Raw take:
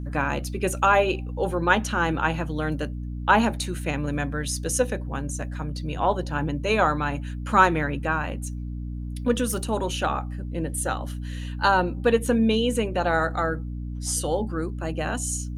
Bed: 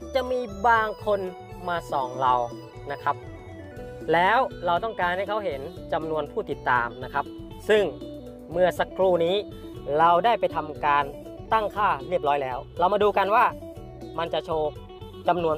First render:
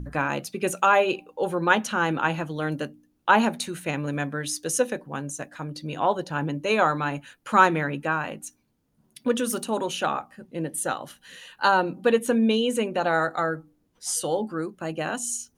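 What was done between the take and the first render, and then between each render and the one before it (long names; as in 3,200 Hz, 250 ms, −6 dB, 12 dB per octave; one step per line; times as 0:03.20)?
hum removal 60 Hz, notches 5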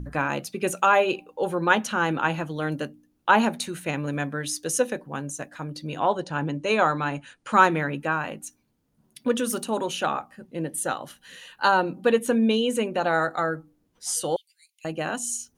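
0:06.11–0:07.53: linear-phase brick-wall low-pass 10,000 Hz
0:14.36–0:14.85: Butterworth high-pass 2,100 Hz 96 dB per octave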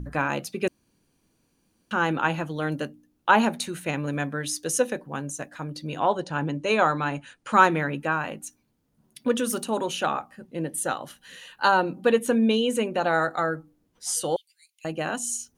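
0:00.68–0:01.91: fill with room tone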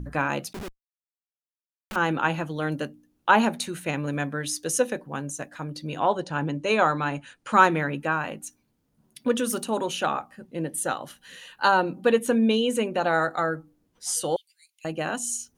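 0:00.53–0:01.96: comparator with hysteresis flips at −37.5 dBFS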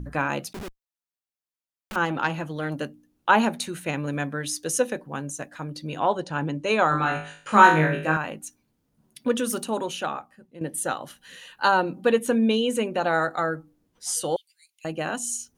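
0:02.05–0:02.80: saturating transformer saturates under 1,100 Hz
0:06.89–0:08.17: flutter between parallel walls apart 3.3 metres, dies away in 0.45 s
0:09.65–0:10.61: fade out, to −12 dB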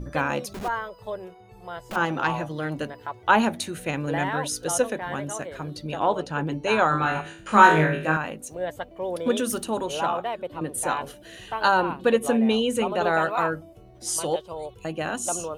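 mix in bed −9 dB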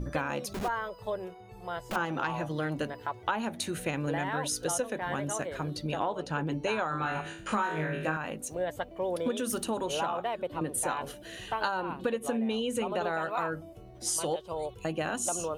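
downward compressor 10 to 1, threshold −27 dBFS, peak gain reduction 18.5 dB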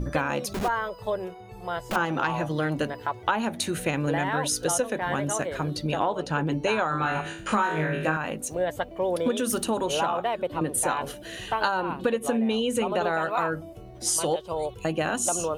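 level +5.5 dB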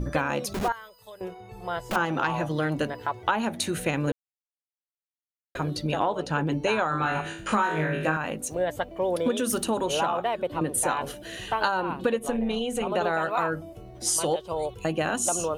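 0:00.72–0:01.21: first-order pre-emphasis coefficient 0.9
0:04.12–0:05.55: silence
0:12.19–0:12.87: amplitude modulation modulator 250 Hz, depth 40%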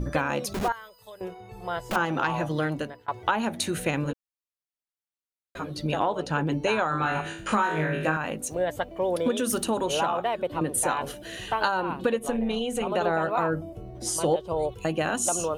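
0:02.63–0:03.08: fade out, to −23.5 dB
0:04.04–0:05.79: string-ensemble chorus
0:13.06–0:14.72: tilt shelving filter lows +4.5 dB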